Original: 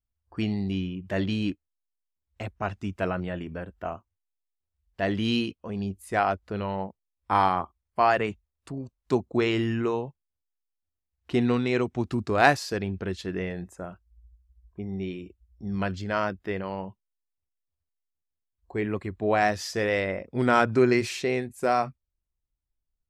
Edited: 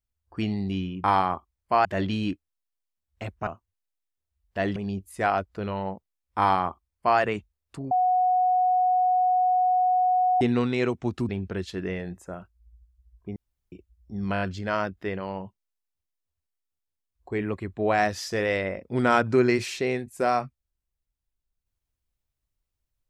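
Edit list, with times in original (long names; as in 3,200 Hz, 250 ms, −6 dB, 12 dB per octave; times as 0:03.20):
0:02.66–0:03.90: remove
0:05.19–0:05.69: remove
0:07.31–0:08.12: duplicate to 0:01.04
0:08.84–0:11.34: beep over 734 Hz −18.5 dBFS
0:12.22–0:12.80: remove
0:14.87–0:15.23: fill with room tone
0:15.84: stutter 0.02 s, 5 plays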